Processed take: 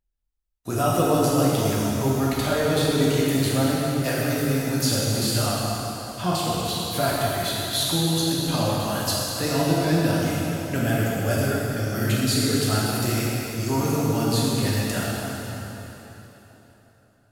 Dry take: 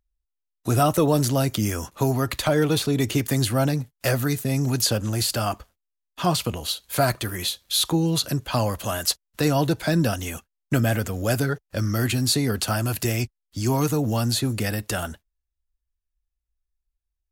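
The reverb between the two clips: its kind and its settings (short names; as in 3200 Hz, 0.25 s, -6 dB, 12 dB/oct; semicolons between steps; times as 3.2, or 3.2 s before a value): plate-style reverb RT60 3.8 s, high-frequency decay 0.85×, DRR -6.5 dB; gain -6.5 dB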